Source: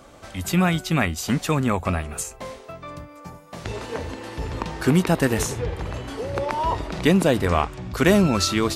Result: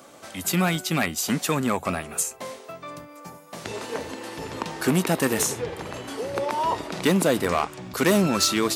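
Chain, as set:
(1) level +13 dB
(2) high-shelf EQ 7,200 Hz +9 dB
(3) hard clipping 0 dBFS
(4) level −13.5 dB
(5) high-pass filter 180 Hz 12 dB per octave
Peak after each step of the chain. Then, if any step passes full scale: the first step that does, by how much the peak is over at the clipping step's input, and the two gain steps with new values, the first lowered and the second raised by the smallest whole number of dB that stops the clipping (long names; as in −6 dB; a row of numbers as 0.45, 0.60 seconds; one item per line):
+9.0, +9.5, 0.0, −13.5, −7.5 dBFS
step 1, 9.5 dB
step 1 +3 dB, step 4 −3.5 dB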